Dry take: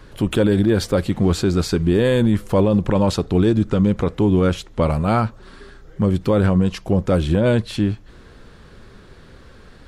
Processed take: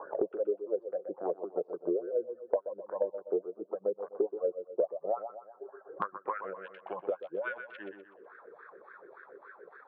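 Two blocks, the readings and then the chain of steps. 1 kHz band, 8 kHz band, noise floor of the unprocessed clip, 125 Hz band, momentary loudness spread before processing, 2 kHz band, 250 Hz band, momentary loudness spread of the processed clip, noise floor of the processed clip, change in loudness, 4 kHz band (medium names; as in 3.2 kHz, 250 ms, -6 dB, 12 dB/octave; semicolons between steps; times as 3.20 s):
-12.5 dB, under -40 dB, -45 dBFS, under -40 dB, 5 LU, -13.5 dB, -25.5 dB, 20 LU, -61 dBFS, -17.0 dB, under -30 dB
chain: local Wiener filter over 15 samples; band-pass sweep 600 Hz -> 3.2 kHz, 5.42–6.70 s; spectral gate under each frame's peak -25 dB strong; transient shaper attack +6 dB, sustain -6 dB; wah-wah 3.5 Hz 400–1600 Hz, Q 4.8; high-pass 180 Hz 24 dB/octave; tilt EQ -4 dB/octave; reverb removal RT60 0.58 s; peaking EQ 230 Hz -13.5 dB 0.55 oct; feedback echo behind a low-pass 124 ms, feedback 30%, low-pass 3.6 kHz, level -11.5 dB; three bands compressed up and down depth 100%; trim -3.5 dB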